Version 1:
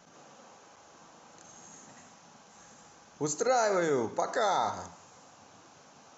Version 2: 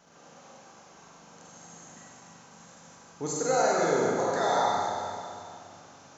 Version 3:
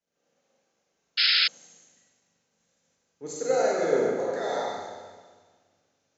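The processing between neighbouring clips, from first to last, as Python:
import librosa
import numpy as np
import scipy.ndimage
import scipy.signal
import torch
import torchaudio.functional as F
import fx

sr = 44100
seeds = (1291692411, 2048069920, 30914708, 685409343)

y1 = fx.rev_schroeder(x, sr, rt60_s=2.4, comb_ms=32, drr_db=-4.0)
y1 = y1 * 10.0 ** (-2.5 / 20.0)
y2 = fx.graphic_eq(y1, sr, hz=(125, 250, 500, 1000, 2000, 4000), db=(-3, 3, 9, -6, 6, 3))
y2 = fx.spec_paint(y2, sr, seeds[0], shape='noise', start_s=1.17, length_s=0.31, low_hz=1300.0, high_hz=5300.0, level_db=-18.0)
y2 = fx.band_widen(y2, sr, depth_pct=70)
y2 = y2 * 10.0 ** (-8.0 / 20.0)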